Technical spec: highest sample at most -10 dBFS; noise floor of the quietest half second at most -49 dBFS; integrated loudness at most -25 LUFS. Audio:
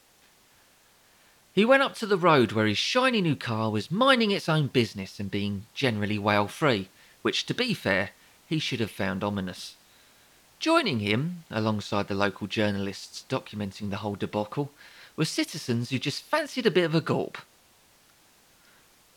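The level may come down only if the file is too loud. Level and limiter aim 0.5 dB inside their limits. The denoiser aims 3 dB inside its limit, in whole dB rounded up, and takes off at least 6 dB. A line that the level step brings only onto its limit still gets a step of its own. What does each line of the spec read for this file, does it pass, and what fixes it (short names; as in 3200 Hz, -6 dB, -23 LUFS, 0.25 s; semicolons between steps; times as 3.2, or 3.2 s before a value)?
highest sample -8.5 dBFS: fail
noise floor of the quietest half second -60 dBFS: OK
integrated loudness -26.5 LUFS: OK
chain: limiter -10.5 dBFS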